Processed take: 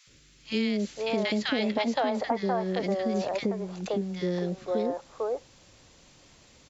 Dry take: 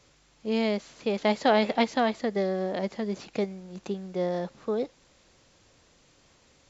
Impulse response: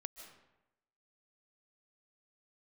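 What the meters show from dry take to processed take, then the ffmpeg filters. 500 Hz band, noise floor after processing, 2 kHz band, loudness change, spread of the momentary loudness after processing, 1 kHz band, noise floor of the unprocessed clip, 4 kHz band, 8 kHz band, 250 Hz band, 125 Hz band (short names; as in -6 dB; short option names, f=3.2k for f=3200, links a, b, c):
-1.0 dB, -58 dBFS, -0.5 dB, -1.0 dB, 6 LU, -2.0 dB, -62 dBFS, +1.5 dB, n/a, +0.5 dB, +2.5 dB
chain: -filter_complex "[0:a]acrossover=split=460|1400[a][b][c];[a]adelay=70[d];[b]adelay=520[e];[d][e][c]amix=inputs=3:normalize=0,acompressor=threshold=-29dB:ratio=6,volume=5.5dB"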